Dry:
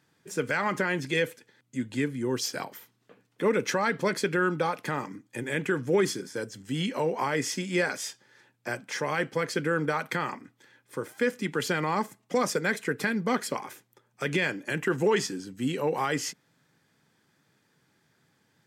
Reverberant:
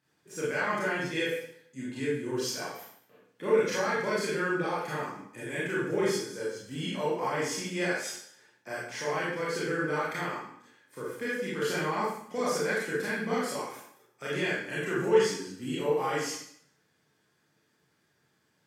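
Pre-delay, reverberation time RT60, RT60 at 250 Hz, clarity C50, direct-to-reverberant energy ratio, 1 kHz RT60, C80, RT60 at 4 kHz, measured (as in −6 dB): 25 ms, 0.65 s, 0.65 s, 0.0 dB, −8.0 dB, 0.65 s, 4.0 dB, 0.65 s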